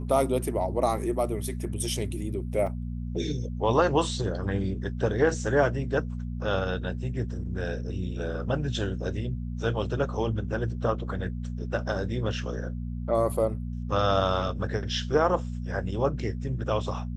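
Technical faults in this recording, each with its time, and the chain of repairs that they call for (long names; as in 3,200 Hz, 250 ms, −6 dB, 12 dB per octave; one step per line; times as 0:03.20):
mains hum 60 Hz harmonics 4 −33 dBFS
0:02.67: drop-out 2.7 ms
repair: hum removal 60 Hz, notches 4
repair the gap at 0:02.67, 2.7 ms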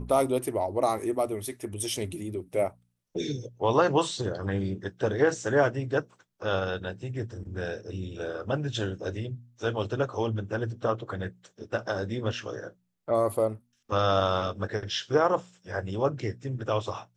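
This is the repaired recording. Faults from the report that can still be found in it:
none of them is left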